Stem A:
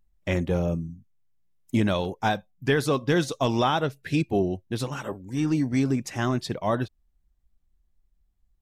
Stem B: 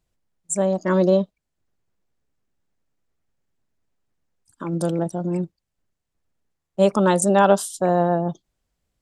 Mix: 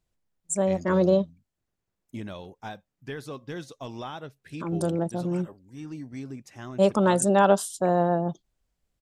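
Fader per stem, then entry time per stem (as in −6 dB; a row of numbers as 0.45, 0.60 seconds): −14.0, −3.5 decibels; 0.40, 0.00 seconds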